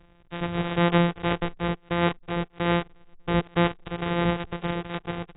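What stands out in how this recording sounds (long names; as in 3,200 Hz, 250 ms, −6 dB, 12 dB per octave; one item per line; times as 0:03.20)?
a buzz of ramps at a fixed pitch in blocks of 256 samples
AAC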